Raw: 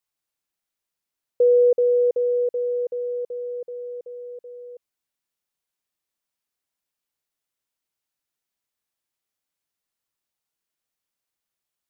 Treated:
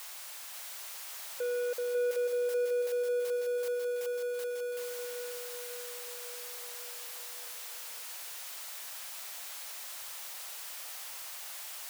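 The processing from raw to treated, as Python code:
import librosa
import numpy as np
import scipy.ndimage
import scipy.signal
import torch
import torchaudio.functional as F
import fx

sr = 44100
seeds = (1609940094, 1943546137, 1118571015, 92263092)

p1 = x + 0.5 * 10.0 ** (-32.0 / 20.0) * np.sign(x)
p2 = scipy.signal.sosfilt(scipy.signal.butter(4, 560.0, 'highpass', fs=sr, output='sos'), p1)
p3 = 10.0 ** (-25.0 / 20.0) * np.tanh(p2 / 10.0 ** (-25.0 / 20.0))
p4 = p3 + fx.echo_feedback(p3, sr, ms=545, feedback_pct=58, wet_db=-5, dry=0)
y = p4 * 10.0 ** (-5.5 / 20.0)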